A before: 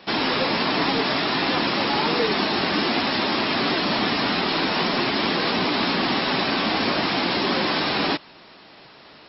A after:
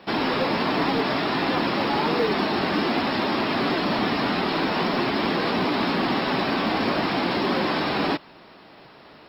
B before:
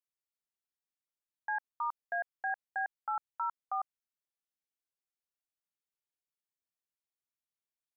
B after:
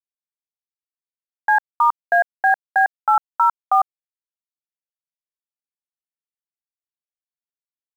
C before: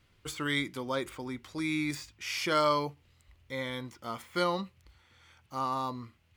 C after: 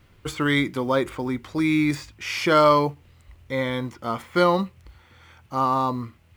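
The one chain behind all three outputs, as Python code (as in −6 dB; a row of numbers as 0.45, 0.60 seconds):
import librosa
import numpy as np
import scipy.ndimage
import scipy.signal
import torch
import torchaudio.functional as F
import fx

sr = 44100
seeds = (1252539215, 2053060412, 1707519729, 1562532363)

p1 = fx.high_shelf(x, sr, hz=2600.0, db=-10.0)
p2 = 10.0 ** (-23.0 / 20.0) * np.tanh(p1 / 10.0 ** (-23.0 / 20.0))
p3 = p1 + F.gain(torch.from_numpy(p2), -10.0).numpy()
p4 = fx.quant_companded(p3, sr, bits=8)
y = p4 * 10.0 ** (-24 / 20.0) / np.sqrt(np.mean(np.square(p4)))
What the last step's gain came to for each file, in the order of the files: −1.0, +18.0, +9.5 decibels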